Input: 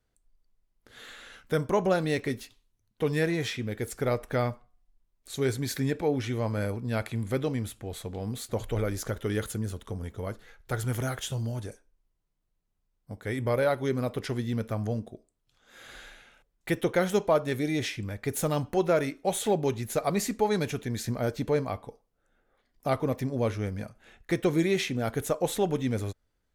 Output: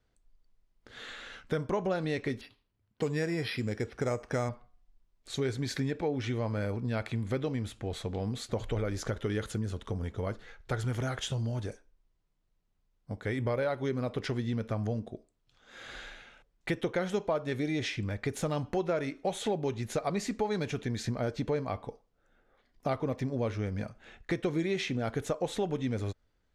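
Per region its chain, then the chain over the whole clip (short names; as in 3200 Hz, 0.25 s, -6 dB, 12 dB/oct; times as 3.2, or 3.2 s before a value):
2.41–4.49 HPF 53 Hz + careless resampling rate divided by 6×, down filtered, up hold
whole clip: compressor 3:1, threshold -32 dBFS; LPF 6000 Hz 12 dB/oct; gain +2.5 dB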